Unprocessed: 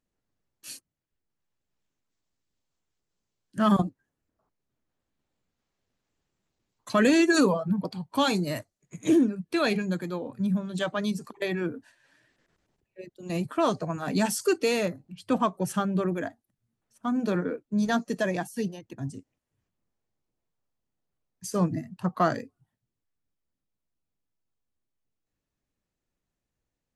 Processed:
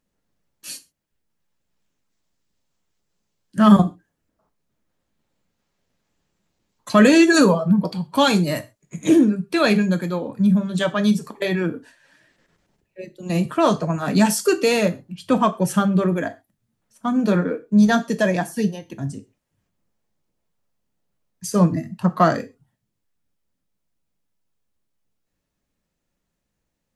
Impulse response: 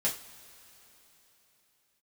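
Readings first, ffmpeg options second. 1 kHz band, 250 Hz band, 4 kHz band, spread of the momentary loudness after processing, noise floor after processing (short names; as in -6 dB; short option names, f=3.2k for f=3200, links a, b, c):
+7.5 dB, +9.0 dB, +7.5 dB, 17 LU, -78 dBFS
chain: -filter_complex "[0:a]asplit=2[a][b];[1:a]atrim=start_sample=2205,atrim=end_sample=6174[c];[b][c]afir=irnorm=-1:irlink=0,volume=-11.5dB[d];[a][d]amix=inputs=2:normalize=0,volume=5dB"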